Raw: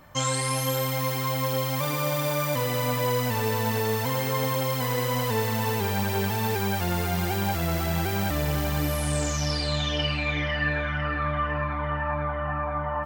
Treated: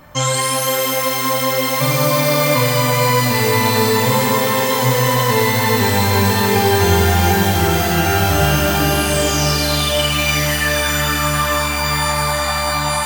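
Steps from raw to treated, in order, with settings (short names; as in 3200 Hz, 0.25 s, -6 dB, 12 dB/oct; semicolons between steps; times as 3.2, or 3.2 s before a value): shimmer reverb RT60 3.5 s, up +12 st, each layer -2 dB, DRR 2.5 dB; gain +7.5 dB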